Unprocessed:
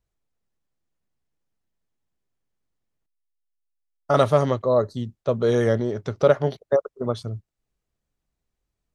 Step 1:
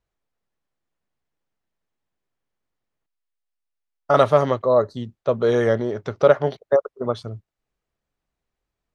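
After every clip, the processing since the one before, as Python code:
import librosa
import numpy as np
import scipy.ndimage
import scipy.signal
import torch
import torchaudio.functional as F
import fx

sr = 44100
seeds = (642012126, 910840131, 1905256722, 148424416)

y = fx.lowpass(x, sr, hz=2500.0, slope=6)
y = fx.low_shelf(y, sr, hz=360.0, db=-9.0)
y = F.gain(torch.from_numpy(y), 5.5).numpy()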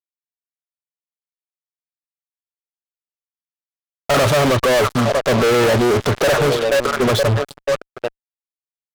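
y = fx.echo_stepped(x, sr, ms=318, hz=3700.0, octaves=-1.4, feedback_pct=70, wet_db=-11)
y = fx.fuzz(y, sr, gain_db=39.0, gate_db=-41.0)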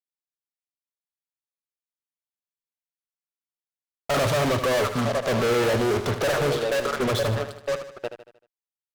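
y = fx.echo_feedback(x, sr, ms=77, feedback_pct=47, wet_db=-10.0)
y = F.gain(torch.from_numpy(y), -8.0).numpy()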